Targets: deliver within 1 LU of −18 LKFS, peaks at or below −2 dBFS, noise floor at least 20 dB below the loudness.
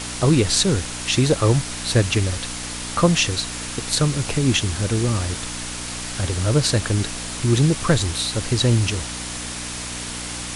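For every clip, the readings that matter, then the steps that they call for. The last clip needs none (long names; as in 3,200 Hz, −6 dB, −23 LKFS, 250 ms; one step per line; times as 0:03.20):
mains hum 60 Hz; hum harmonics up to 300 Hz; level of the hum −33 dBFS; background noise floor −31 dBFS; target noise floor −41 dBFS; integrated loudness −21.0 LKFS; sample peak −2.5 dBFS; target loudness −18.0 LKFS
→ hum removal 60 Hz, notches 5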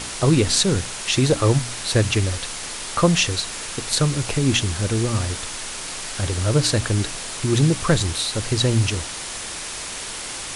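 mains hum none found; background noise floor −32 dBFS; target noise floor −42 dBFS
→ noise reduction from a noise print 10 dB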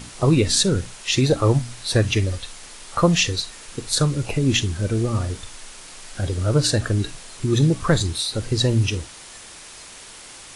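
background noise floor −42 dBFS; integrated loudness −21.0 LKFS; sample peak −2.5 dBFS; target loudness −18.0 LKFS
→ level +3 dB
brickwall limiter −2 dBFS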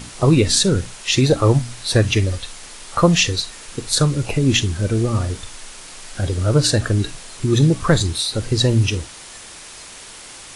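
integrated loudness −18.0 LKFS; sample peak −2.0 dBFS; background noise floor −39 dBFS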